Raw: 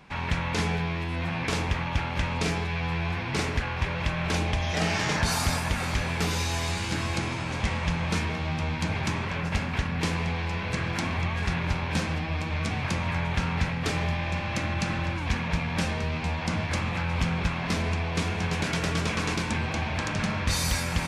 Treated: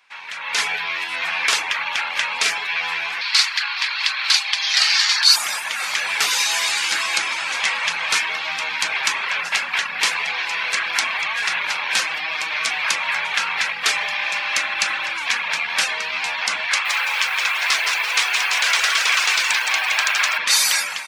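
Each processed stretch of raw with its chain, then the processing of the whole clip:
3.21–5.36 s: high-pass 860 Hz 24 dB/octave + peaking EQ 4.4 kHz +13.5 dB 0.53 oct
16.68–20.38 s: frequency weighting A + delay 162 ms -11.5 dB + bit-crushed delay 170 ms, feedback 35%, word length 8-bit, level -4 dB
whole clip: high-pass 1.4 kHz 12 dB/octave; reverb removal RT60 0.59 s; level rider gain up to 16 dB

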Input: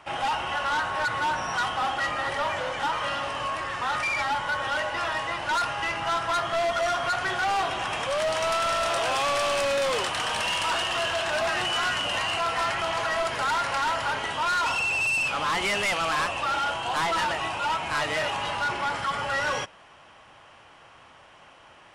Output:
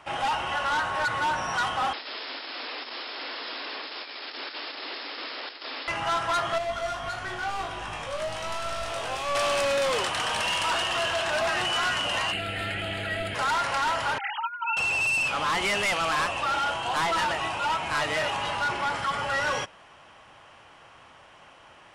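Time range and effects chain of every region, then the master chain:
1.93–5.88 s: integer overflow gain 29 dB + brick-wall FIR band-pass 240–5400 Hz
6.58–9.35 s: bass shelf 110 Hz +11.5 dB + feedback comb 52 Hz, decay 0.32 s, mix 90%
12.31–13.34 s: mains buzz 100 Hz, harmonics 35, -38 dBFS -5 dB/octave + static phaser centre 2.5 kHz, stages 4
14.18–14.77 s: formants replaced by sine waves + high-pass 620 Hz + compressor with a negative ratio -29 dBFS, ratio -0.5
whole clip: none

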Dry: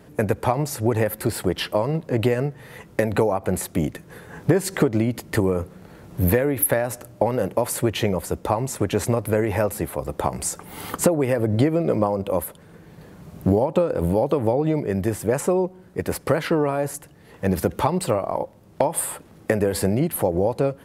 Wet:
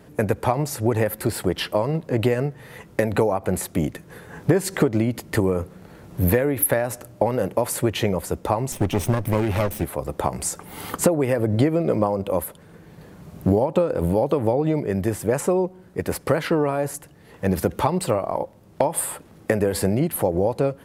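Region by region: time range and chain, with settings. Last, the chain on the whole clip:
8.72–9.84 s: comb filter that takes the minimum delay 0.33 ms + bass shelf 230 Hz +4.5 dB + band-stop 460 Hz, Q 5.5
whole clip: none

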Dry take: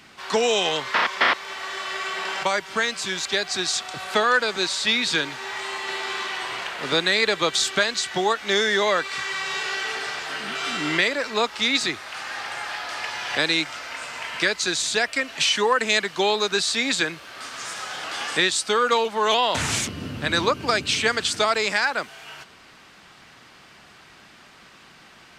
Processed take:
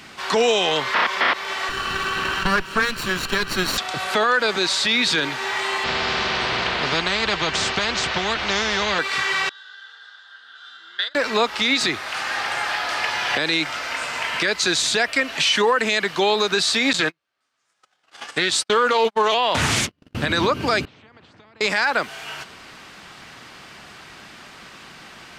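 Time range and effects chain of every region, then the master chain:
1.69–3.78 s: comb filter that takes the minimum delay 0.71 ms + tone controls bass +2 dB, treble -6 dB
5.84–8.99 s: tape spacing loss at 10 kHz 34 dB + comb of notches 280 Hz + spectrum-flattening compressor 4:1
9.49–11.15 s: gate -21 dBFS, range -15 dB + two resonant band-passes 2.3 kHz, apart 1.2 oct + frequency shift +33 Hz
16.93–20.15 s: gate -28 dBFS, range -46 dB + loudspeaker Doppler distortion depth 0.18 ms
20.85–21.61 s: compression 12:1, threshold -25 dBFS + ladder band-pass 160 Hz, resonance 20% + spectrum-flattening compressor 4:1
whole clip: dynamic bell 7.7 kHz, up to -5 dB, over -42 dBFS, Q 1; loudness maximiser +16 dB; trim -9 dB

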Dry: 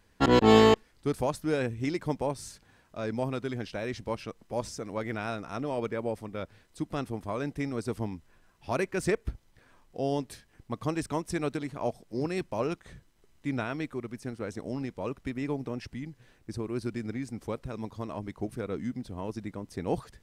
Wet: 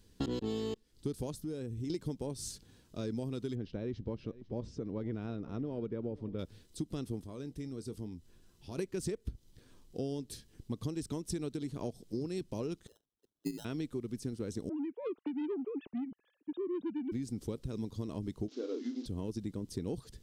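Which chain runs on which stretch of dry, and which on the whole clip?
1.34–1.90 s: peaking EQ 3 kHz -4.5 dB 2.5 oct + compression 3:1, threshold -40 dBFS
3.55–6.39 s: tape spacing loss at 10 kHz 33 dB + delay 500 ms -21 dB
7.21–8.78 s: compression 1.5:1, threshold -59 dBFS + doubling 23 ms -14 dB
12.87–13.65 s: formants replaced by sine waves + AM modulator 110 Hz, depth 70% + sample-rate reducer 2.3 kHz
14.69–17.12 s: formants replaced by sine waves + transformer saturation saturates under 690 Hz
18.48–19.06 s: one-bit delta coder 32 kbps, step -49.5 dBFS + brick-wall FIR high-pass 240 Hz + doubling 34 ms -8 dB
whole clip: high-order bell 1.2 kHz -12.5 dB 2.4 oct; compression 10:1, threshold -36 dBFS; trim +3 dB

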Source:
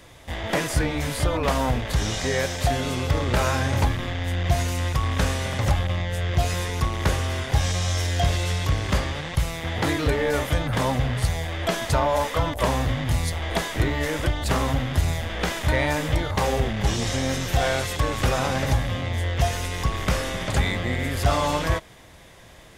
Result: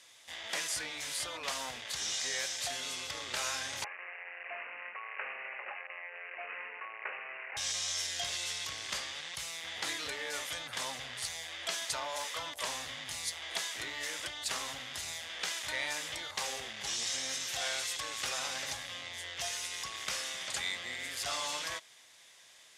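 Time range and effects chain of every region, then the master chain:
3.84–7.57 s: brick-wall FIR high-pass 360 Hz + careless resampling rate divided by 8×, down none, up filtered
whole clip: low-pass 6.8 kHz 12 dB/octave; differentiator; trim +2 dB

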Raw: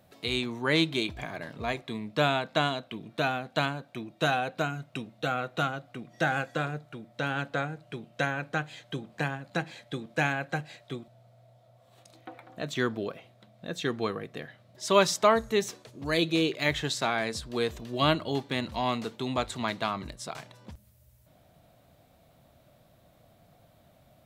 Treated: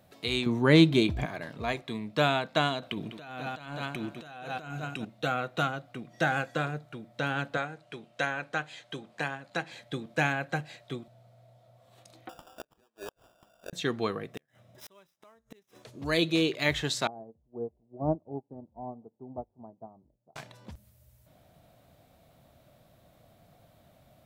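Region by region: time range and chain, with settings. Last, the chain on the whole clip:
0.46–1.26 s: bass shelf 490 Hz +11 dB + short-mantissa float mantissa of 8-bit
2.82–5.05 s: feedback delay 200 ms, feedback 25%, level -12.5 dB + compressor with a negative ratio -39 dBFS
7.57–9.72 s: low-pass 11 kHz + bass shelf 250 Hz -11 dB
12.29–13.73 s: high-pass 570 Hz + inverted gate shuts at -27 dBFS, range -36 dB + sample-rate reducer 2.1 kHz
14.31–15.83 s: dead-time distortion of 0.057 ms + inverted gate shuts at -26 dBFS, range -37 dB + Butterworth band-stop 4.4 kHz, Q 6.7
17.07–20.36 s: elliptic low-pass 820 Hz, stop band 70 dB + upward expansion 2.5:1, over -41 dBFS
whole clip: none

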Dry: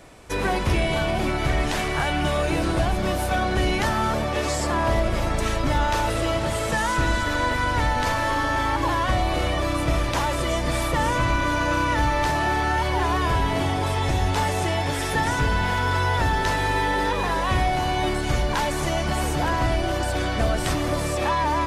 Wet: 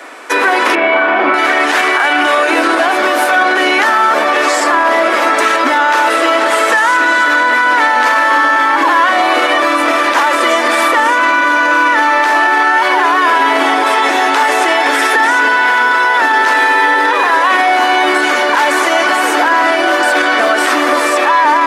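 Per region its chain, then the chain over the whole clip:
0.75–1.34 s: low-pass 1.9 kHz + flutter echo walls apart 7.1 m, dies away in 0.45 s
whole clip: steep high-pass 250 Hz 72 dB/octave; peaking EQ 1.5 kHz +12 dB 1.7 oct; loudness maximiser +12.5 dB; trim -1.5 dB

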